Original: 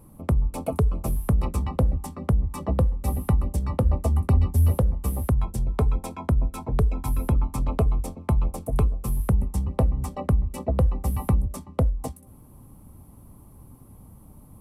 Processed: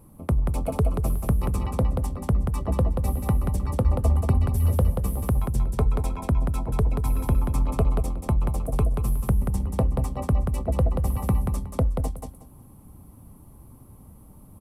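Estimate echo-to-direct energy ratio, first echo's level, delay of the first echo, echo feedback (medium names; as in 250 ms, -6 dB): -5.0 dB, -5.0 dB, 183 ms, 18%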